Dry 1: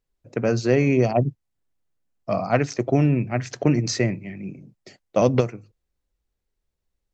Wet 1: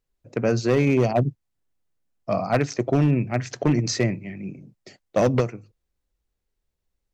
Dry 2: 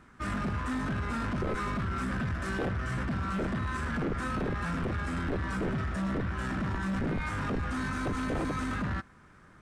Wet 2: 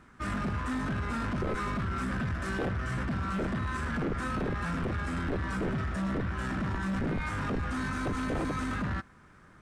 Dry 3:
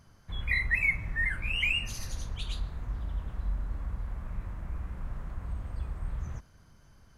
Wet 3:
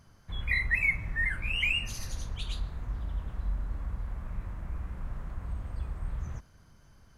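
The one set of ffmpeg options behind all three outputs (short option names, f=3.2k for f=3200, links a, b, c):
-af "asoftclip=type=hard:threshold=-12.5dB"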